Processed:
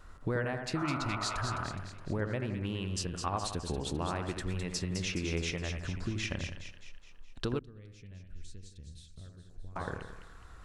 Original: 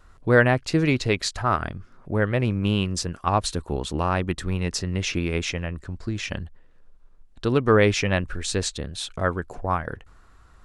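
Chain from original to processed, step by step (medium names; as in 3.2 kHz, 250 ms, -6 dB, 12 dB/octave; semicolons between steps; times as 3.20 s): compression 6:1, threshold -32 dBFS, peak gain reduction 19 dB; two-band feedback delay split 1.9 kHz, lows 84 ms, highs 209 ms, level -6 dB; 0.78–1.58 s: spectral replace 370–1500 Hz after; 7.59–9.76 s: amplifier tone stack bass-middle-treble 10-0-1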